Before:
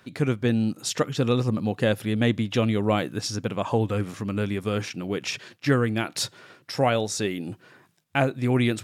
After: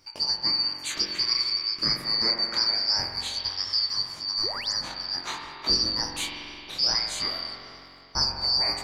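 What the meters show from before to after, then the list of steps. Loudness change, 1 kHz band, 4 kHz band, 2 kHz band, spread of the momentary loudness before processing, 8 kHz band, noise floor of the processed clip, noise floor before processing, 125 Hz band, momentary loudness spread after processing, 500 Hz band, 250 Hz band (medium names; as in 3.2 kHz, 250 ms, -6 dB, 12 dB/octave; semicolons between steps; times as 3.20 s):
+1.0 dB, -5.5 dB, +12.5 dB, -5.0 dB, 7 LU, -0.5 dB, -46 dBFS, -60 dBFS, -19.0 dB, 10 LU, -16.5 dB, -17.5 dB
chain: four frequency bands reordered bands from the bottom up 2341; spring tank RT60 2.9 s, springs 44 ms, chirp 65 ms, DRR 1 dB; chorus 0.23 Hz, delay 20 ms, depth 6.9 ms; painted sound rise, 4.43–4.73 s, 290–8000 Hz -37 dBFS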